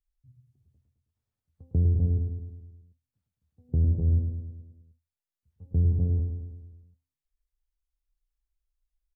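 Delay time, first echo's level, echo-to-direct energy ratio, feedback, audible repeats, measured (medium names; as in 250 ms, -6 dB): 106 ms, -6.0 dB, -4.5 dB, 57%, 6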